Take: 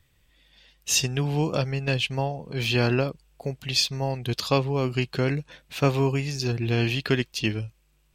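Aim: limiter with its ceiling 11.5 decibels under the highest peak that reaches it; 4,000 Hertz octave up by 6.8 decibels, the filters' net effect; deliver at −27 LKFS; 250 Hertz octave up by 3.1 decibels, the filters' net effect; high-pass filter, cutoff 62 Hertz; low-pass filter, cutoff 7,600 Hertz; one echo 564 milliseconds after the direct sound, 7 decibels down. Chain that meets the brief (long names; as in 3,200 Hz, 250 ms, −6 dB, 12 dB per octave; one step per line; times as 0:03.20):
high-pass filter 62 Hz
low-pass filter 7,600 Hz
parametric band 250 Hz +4 dB
parametric band 4,000 Hz +9 dB
brickwall limiter −15 dBFS
single-tap delay 564 ms −7 dB
level −1 dB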